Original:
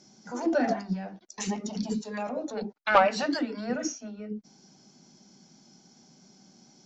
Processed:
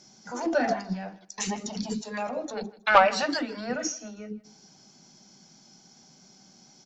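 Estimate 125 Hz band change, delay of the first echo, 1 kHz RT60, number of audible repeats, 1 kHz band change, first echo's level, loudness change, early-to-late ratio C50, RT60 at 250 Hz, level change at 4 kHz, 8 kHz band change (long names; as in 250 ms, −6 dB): −1.0 dB, 159 ms, no reverb audible, 2, +2.5 dB, −20.0 dB, +2.0 dB, no reverb audible, no reverb audible, +4.0 dB, can't be measured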